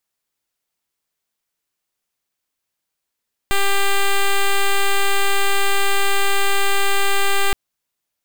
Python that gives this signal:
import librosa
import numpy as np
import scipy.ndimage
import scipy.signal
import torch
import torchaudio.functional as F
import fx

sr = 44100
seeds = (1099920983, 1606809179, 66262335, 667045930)

y = fx.pulse(sr, length_s=4.02, hz=396.0, level_db=-15.0, duty_pct=7)